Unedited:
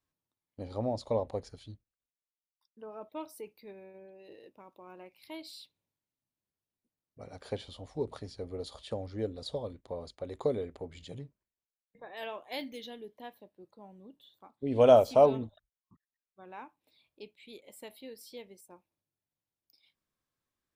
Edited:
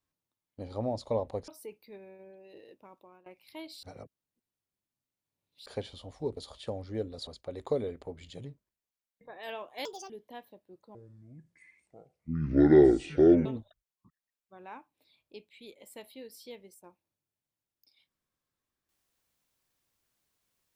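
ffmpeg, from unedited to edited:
-filter_complex "[0:a]asplit=11[a][b][c][d][e][f][g][h][i][j][k];[a]atrim=end=1.482[l];[b]atrim=start=3.228:end=5.01,asetpts=PTS-STARTPTS,afade=t=out:st=1.462:d=0.32:silence=0.112202[m];[c]atrim=start=5.01:end=5.582,asetpts=PTS-STARTPTS,afade=t=in:d=0.004:c=hsin:silence=0.112202[n];[d]atrim=start=5.578:end=7.412,asetpts=PTS-STARTPTS,areverse[o];[e]atrim=start=7.408:end=8.122[p];[f]atrim=start=8.608:end=9.512[q];[g]atrim=start=10.008:end=12.594[r];[h]atrim=start=12.59:end=12.99,asetpts=PTS-STARTPTS,asetrate=71442,aresample=44100[s];[i]atrim=start=12.986:end=13.844[t];[j]atrim=start=13.84:end=15.32,asetpts=PTS-STARTPTS,asetrate=26019,aresample=44100[u];[k]atrim=start=15.316[v];[m][n]concat=n=2:v=0:a=1[w];[l][w]acrossfade=d=0.004:c1=hsin:c2=hsin[x];[x][o]acrossfade=d=0.004:c1=hsin:c2=hsin[y];[y][p]acrossfade=d=0.004:c1=hsin:c2=hsin[z];[z][q]acrossfade=d=0.004:c1=hsin:c2=hsin[aa];[aa][r]acrossfade=d=0.004:c1=hsin:c2=hsin[ab];[ab][s]acrossfade=d=0.004:c1=hsin:c2=hsin[ac];[ac][t]acrossfade=d=0.004:c1=hsin:c2=hsin[ad];[ad][u]acrossfade=d=0.004:c1=hsin:c2=hsin[ae];[ae][v]acrossfade=d=0.004:c1=hsin:c2=hsin"

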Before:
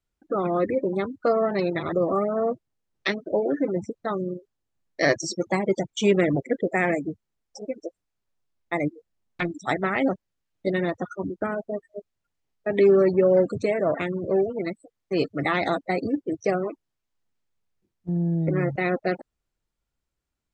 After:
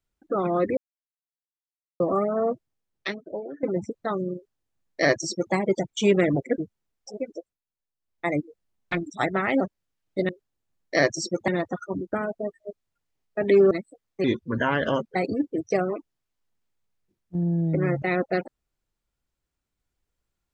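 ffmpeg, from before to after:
-filter_complex "[0:a]asplit=12[a][b][c][d][e][f][g][h][i][j][k][l];[a]atrim=end=0.77,asetpts=PTS-STARTPTS,afade=t=out:st=0.766:d=0.004:c=hsin[m];[b]atrim=start=0.77:end=2,asetpts=PTS-STARTPTS,volume=0[n];[c]atrim=start=2:end=3.63,asetpts=PTS-STARTPTS,afade=t=in:d=0.004:c=hsin,afade=t=out:st=0.52:d=1.11:silence=0.133352[o];[d]atrim=start=3.63:end=6.582,asetpts=PTS-STARTPTS,afade=t=in:d=0.004:c=hsin:silence=0.133352[p];[e]atrim=start=7.058:end=8.06,asetpts=PTS-STARTPTS,afade=t=out:st=0.712:d=0.29:silence=0.223872[q];[f]atrim=start=8.06:end=8.45,asetpts=PTS-STARTPTS,volume=-13dB[r];[g]atrim=start=8.45:end=10.772,asetpts=PTS-STARTPTS,afade=t=in:d=0.29:silence=0.223872[s];[h]atrim=start=4.348:end=5.542[t];[i]atrim=start=10.768:end=13.002[u];[j]atrim=start=14.628:end=15.164[v];[k]atrim=start=15.16:end=15.89,asetpts=PTS-STARTPTS,asetrate=35280,aresample=44100,atrim=end_sample=40241,asetpts=PTS-STARTPTS[w];[l]atrim=start=15.886[x];[m][n][o][p]concat=n=4:v=0:a=1[y];[q][r][s]concat=n=3:v=0:a=1[z];[y][z]acrossfade=d=0.004:c1=hsin:c2=hsin[aa];[aa][t]acrossfade=d=0.004:c1=hsin:c2=hsin[ab];[ab][u]acrossfade=d=0.004:c1=hsin:c2=hsin[ac];[ac][v]acrossfade=d=0.004:c1=hsin:c2=hsin[ad];[ad][w]acrossfade=d=0.004:c1=hsin:c2=hsin[ae];[ae][x]acrossfade=d=0.004:c1=hsin:c2=hsin"

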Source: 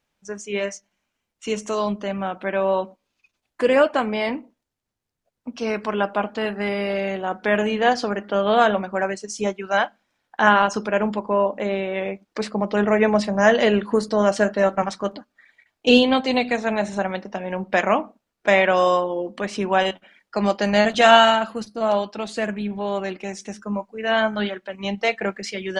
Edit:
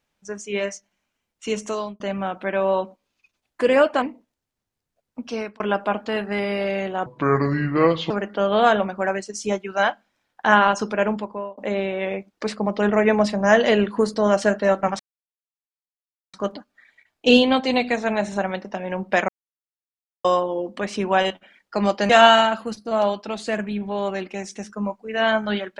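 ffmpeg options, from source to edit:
-filter_complex "[0:a]asplit=11[a][b][c][d][e][f][g][h][i][j][k];[a]atrim=end=2,asetpts=PTS-STARTPTS,afade=t=out:st=1.67:d=0.33[l];[b]atrim=start=2:end=4.022,asetpts=PTS-STARTPTS,afade=t=in:d=0.004:c=hsin[m];[c]atrim=start=4.308:end=5.89,asetpts=PTS-STARTPTS,afade=t=out:st=1.272:d=0.31[n];[d]atrim=start=5.89:end=7.354,asetpts=PTS-STARTPTS,afade=t=in:d=0.004:c=hsin[o];[e]atrim=start=7.35:end=8.05,asetpts=PTS-STARTPTS,asetrate=29547,aresample=44100[p];[f]atrim=start=8.046:end=11.52,asetpts=PTS-STARTPTS,afade=t=out:st=2.954:d=0.52[q];[g]atrim=start=11.52:end=14.94,asetpts=PTS-STARTPTS,afade=t=in:d=0.004:c=hsin,afade=t=out:st=3.416:d=0.004:c=hsin,apad=pad_dur=1.34[r];[h]atrim=start=14.94:end=17.89,asetpts=PTS-STARTPTS,afade=t=in:d=0.004:c=hsin,afade=t=out:st=2.946:d=0.004:c=hsin[s];[i]atrim=start=17.89:end=18.85,asetpts=PTS-STARTPTS,volume=0[t];[j]atrim=start=18.85:end=20.702,asetpts=PTS-STARTPTS,afade=t=in:d=0.004:c=hsin[u];[k]atrim=start=20.988[v];[l][m]concat=n=2:v=0:a=1[w];[n][o]concat=n=2:v=0:a=1[x];[w][x]acrossfade=d=0.004:c1=hsin:c2=hsin[y];[y][p]acrossfade=d=0.004:c1=hsin:c2=hsin[z];[q][r][s][t][u]concat=n=5:v=0:a=1[aa];[z][aa]acrossfade=d=0.004:c1=hsin:c2=hsin[ab];[ab][v]acrossfade=d=0.004:c1=hsin:c2=hsin"

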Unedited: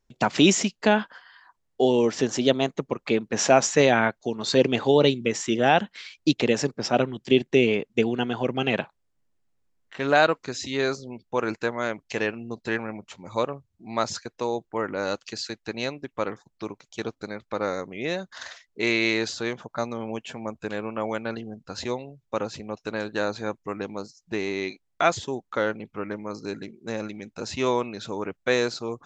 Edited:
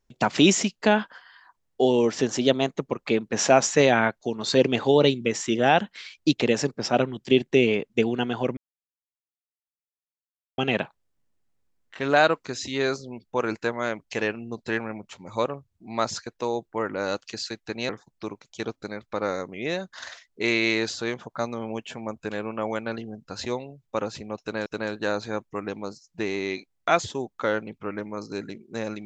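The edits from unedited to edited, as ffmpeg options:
-filter_complex "[0:a]asplit=4[a][b][c][d];[a]atrim=end=8.57,asetpts=PTS-STARTPTS,afade=t=out:st=8.566:d=0.004:c=hsin,apad=pad_dur=2.01[e];[b]atrim=start=8.57:end=15.882,asetpts=PTS-STARTPTS,afade=t=in:d=0.004:c=hsin[f];[c]atrim=start=16.278:end=23.052[g];[d]atrim=start=22.788[h];[e][f]concat=n=2:v=0:a=1[i];[i][g]acrossfade=d=0.004:c1=hsin:c2=hsin[j];[j][h]acrossfade=d=0.004:c1=hsin:c2=hsin"

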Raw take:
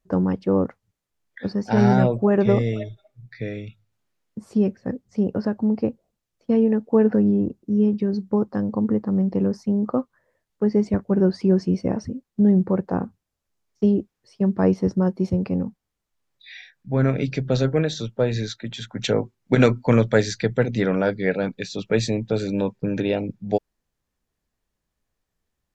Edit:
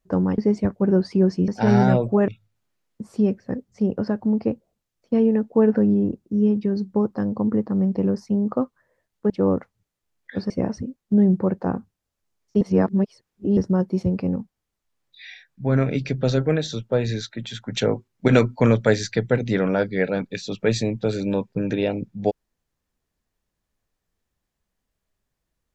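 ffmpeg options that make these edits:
-filter_complex "[0:a]asplit=8[a][b][c][d][e][f][g][h];[a]atrim=end=0.382[i];[b]atrim=start=10.668:end=11.772[j];[c]atrim=start=1.578:end=2.382[k];[d]atrim=start=3.648:end=10.672[l];[e]atrim=start=0.378:end=1.582[m];[f]atrim=start=11.768:end=13.882[n];[g]atrim=start=13.878:end=14.842,asetpts=PTS-STARTPTS,areverse[o];[h]atrim=start=14.838[p];[i][j]acrossfade=d=0.004:c1=hsin:c2=hsin[q];[q][k]acrossfade=d=0.004:c1=hsin:c2=hsin[r];[r][l]acrossfade=d=0.004:c1=hsin:c2=hsin[s];[s][m]acrossfade=d=0.004:c1=hsin:c2=hsin[t];[t][n]acrossfade=d=0.004:c1=hsin:c2=hsin[u];[u][o]acrossfade=d=0.004:c1=hsin:c2=hsin[v];[v][p]acrossfade=d=0.004:c1=hsin:c2=hsin"

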